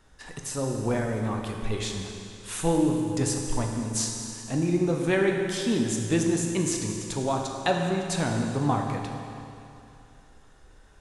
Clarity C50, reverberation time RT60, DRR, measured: 3.0 dB, 2.7 s, 1.5 dB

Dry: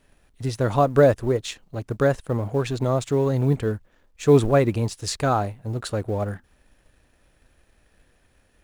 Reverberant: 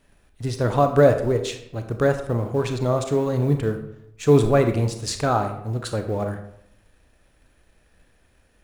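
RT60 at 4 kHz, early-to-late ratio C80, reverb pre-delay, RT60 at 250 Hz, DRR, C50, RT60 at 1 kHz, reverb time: 0.50 s, 12.0 dB, 29 ms, 0.85 s, 6.5 dB, 9.0 dB, 0.75 s, 0.75 s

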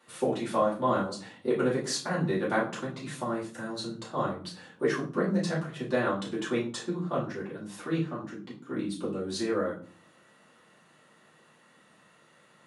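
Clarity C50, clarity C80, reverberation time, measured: 8.0 dB, 13.5 dB, 0.45 s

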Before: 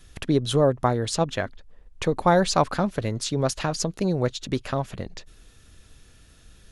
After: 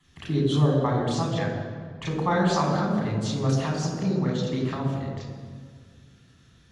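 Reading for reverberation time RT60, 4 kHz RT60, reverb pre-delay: 1.8 s, 1.3 s, 3 ms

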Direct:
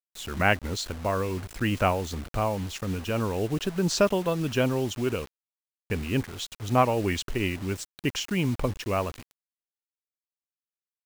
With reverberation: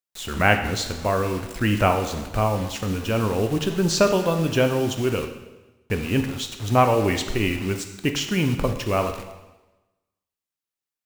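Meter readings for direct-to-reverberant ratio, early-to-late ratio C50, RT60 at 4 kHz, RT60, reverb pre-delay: 6.0 dB, 8.5 dB, 1.0 s, 1.1 s, 7 ms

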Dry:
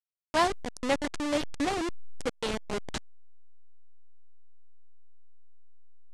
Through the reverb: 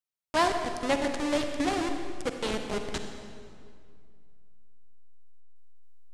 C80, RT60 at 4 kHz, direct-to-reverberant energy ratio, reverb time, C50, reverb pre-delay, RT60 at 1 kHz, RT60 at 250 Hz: 6.5 dB, 1.7 s, 5.0 dB, 2.2 s, 5.5 dB, 39 ms, 2.1 s, 2.7 s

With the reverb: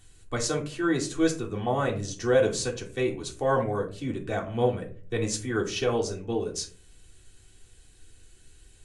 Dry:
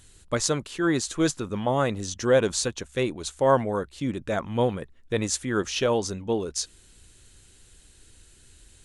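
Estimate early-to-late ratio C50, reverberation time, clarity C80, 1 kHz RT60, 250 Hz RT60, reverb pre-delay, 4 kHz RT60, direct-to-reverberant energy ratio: 11.0 dB, 0.45 s, 16.5 dB, 0.35 s, 0.60 s, 3 ms, 0.25 s, -2.0 dB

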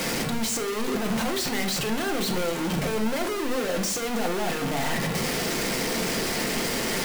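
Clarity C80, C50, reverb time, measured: 12.0 dB, 9.0 dB, 0.65 s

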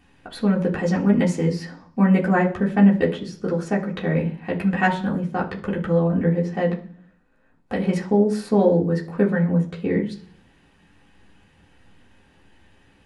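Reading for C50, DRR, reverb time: 12.0 dB, -5.0 dB, 0.45 s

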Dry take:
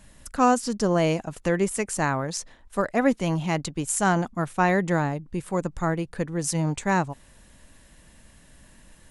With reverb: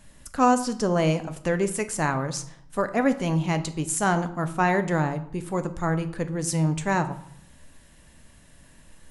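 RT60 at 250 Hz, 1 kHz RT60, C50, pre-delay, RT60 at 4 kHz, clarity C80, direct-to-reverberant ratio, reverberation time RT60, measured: 0.90 s, 0.70 s, 14.0 dB, 7 ms, 0.50 s, 17.0 dB, 9.0 dB, 0.70 s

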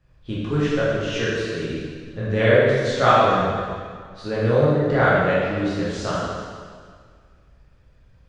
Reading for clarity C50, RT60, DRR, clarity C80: -3.0 dB, 1.9 s, -9.0 dB, -0.5 dB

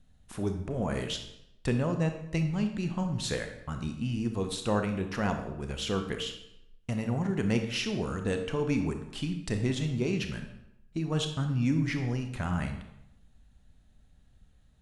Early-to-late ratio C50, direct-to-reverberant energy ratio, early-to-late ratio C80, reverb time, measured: 8.0 dB, 5.5 dB, 10.0 dB, 0.80 s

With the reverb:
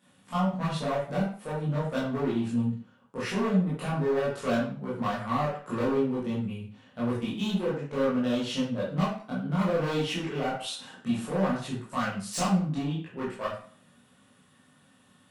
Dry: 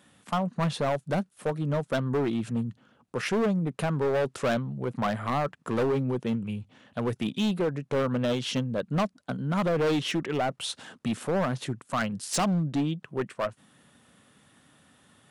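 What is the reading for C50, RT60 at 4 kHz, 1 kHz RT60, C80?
3.0 dB, 0.40 s, 0.50 s, 7.5 dB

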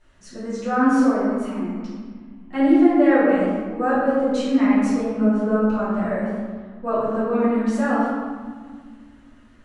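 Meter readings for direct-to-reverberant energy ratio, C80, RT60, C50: -12.0 dB, 0.0 dB, 1.7 s, -2.5 dB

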